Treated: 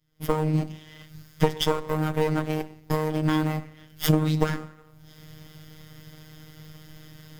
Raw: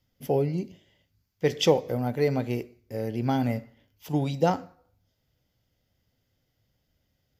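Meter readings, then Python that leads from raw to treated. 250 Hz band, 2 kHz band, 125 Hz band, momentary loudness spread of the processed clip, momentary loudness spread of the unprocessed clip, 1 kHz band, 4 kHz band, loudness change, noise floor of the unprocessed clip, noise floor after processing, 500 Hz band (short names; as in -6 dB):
+2.5 dB, +4.0 dB, +4.0 dB, 11 LU, 11 LU, +1.5 dB, +2.5 dB, +1.5 dB, -76 dBFS, -53 dBFS, -1.5 dB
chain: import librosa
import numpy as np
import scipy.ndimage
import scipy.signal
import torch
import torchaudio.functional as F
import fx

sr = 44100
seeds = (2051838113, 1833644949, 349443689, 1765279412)

p1 = fx.lower_of_two(x, sr, delay_ms=0.6)
p2 = fx.recorder_agc(p1, sr, target_db=-13.0, rise_db_per_s=41.0, max_gain_db=30)
p3 = fx.sample_hold(p2, sr, seeds[0], rate_hz=8400.0, jitter_pct=0)
p4 = p2 + (p3 * librosa.db_to_amplitude(-9.5))
p5 = fx.robotise(p4, sr, hz=155.0)
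y = p5 * librosa.db_to_amplitude(-1.5)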